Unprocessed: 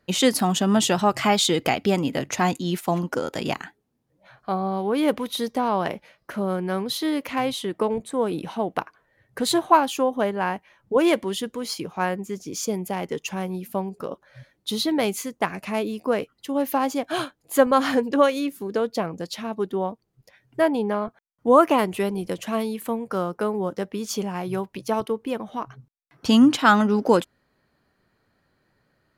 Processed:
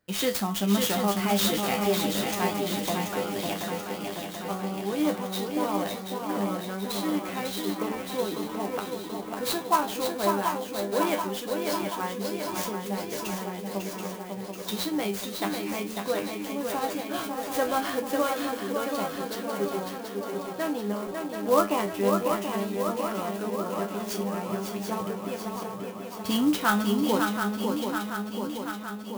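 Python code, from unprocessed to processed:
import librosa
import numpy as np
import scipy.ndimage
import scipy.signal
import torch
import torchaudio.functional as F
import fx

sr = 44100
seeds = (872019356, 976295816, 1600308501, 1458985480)

y = fx.high_shelf(x, sr, hz=4400.0, db=6.0)
y = fx.comb_fb(y, sr, f0_hz=100.0, decay_s=0.22, harmonics='all', damping=0.0, mix_pct=90)
y = fx.echo_swing(y, sr, ms=732, ratio=3, feedback_pct=63, wet_db=-5.0)
y = fx.clock_jitter(y, sr, seeds[0], jitter_ms=0.031)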